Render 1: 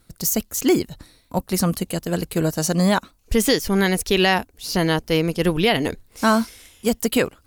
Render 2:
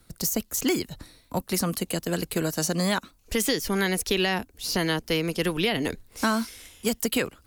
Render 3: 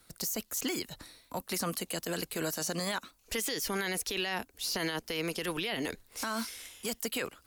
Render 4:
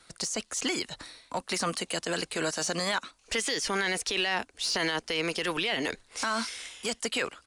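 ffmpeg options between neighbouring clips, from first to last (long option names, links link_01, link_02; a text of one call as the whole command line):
ffmpeg -i in.wav -filter_complex "[0:a]acrossover=split=210|460|1100[link_01][link_02][link_03][link_04];[link_01]acompressor=threshold=-36dB:ratio=4[link_05];[link_02]acompressor=threshold=-28dB:ratio=4[link_06];[link_03]acompressor=threshold=-36dB:ratio=4[link_07];[link_04]acompressor=threshold=-25dB:ratio=4[link_08];[link_05][link_06][link_07][link_08]amix=inputs=4:normalize=0" out.wav
ffmpeg -i in.wav -af "lowshelf=frequency=330:gain=-11.5,alimiter=limit=-24dB:level=0:latency=1:release=27" out.wav
ffmpeg -i in.wav -filter_complex "[0:a]aresample=22050,aresample=44100,asplit=2[link_01][link_02];[link_02]highpass=frequency=720:poles=1,volume=6dB,asoftclip=type=tanh:threshold=-23dB[link_03];[link_01][link_03]amix=inputs=2:normalize=0,lowpass=frequency=5600:poles=1,volume=-6dB,volume=5dB" out.wav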